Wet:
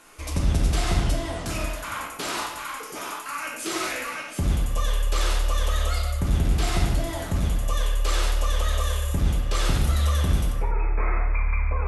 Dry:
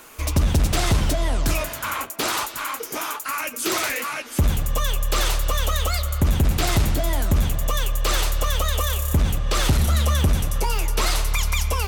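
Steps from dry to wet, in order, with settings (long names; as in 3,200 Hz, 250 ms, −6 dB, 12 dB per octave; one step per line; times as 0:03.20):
linear-phase brick-wall low-pass 12,000 Hz, from 0:10.51 2,600 Hz
convolution reverb, pre-delay 6 ms, DRR −1.5 dB
level −8 dB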